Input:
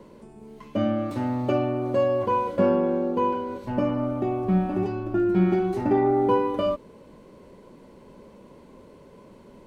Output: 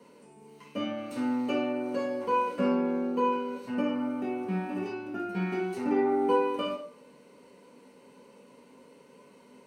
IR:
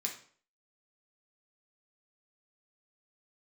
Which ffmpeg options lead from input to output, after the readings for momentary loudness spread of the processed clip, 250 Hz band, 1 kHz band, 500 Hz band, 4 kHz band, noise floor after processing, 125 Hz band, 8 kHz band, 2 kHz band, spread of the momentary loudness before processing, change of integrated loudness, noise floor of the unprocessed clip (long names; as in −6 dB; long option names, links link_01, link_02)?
9 LU, −5.0 dB, −4.0 dB, −6.5 dB, +1.0 dB, −56 dBFS, −12.5 dB, can't be measured, 0.0 dB, 6 LU, −5.5 dB, −50 dBFS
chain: -filter_complex "[0:a]highpass=frequency=500:poles=1[link_01];[1:a]atrim=start_sample=2205,asetrate=52920,aresample=44100[link_02];[link_01][link_02]afir=irnorm=-1:irlink=0"